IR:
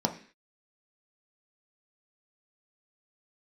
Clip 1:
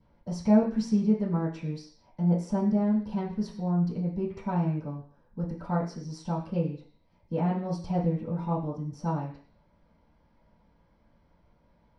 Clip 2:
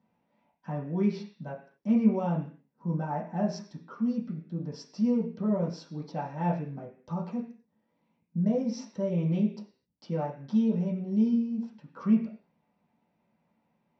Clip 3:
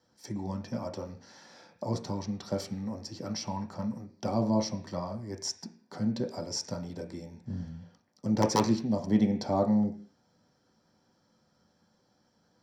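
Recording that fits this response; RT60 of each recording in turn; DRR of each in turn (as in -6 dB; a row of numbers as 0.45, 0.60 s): 3; 0.45, 0.45, 0.45 s; -11.5, -5.5, 3.0 dB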